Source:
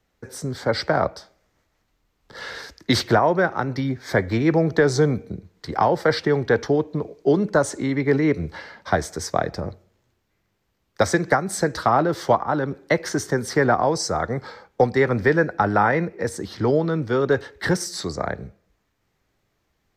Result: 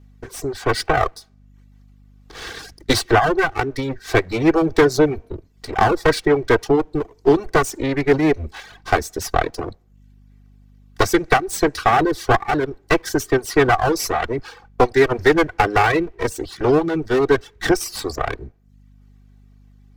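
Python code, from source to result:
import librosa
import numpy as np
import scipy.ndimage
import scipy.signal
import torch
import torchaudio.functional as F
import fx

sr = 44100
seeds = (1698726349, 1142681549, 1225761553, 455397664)

y = fx.lower_of_two(x, sr, delay_ms=2.6)
y = fx.add_hum(y, sr, base_hz=50, snr_db=28)
y = fx.dereverb_blind(y, sr, rt60_s=0.58)
y = F.gain(torch.from_numpy(y), 4.5).numpy()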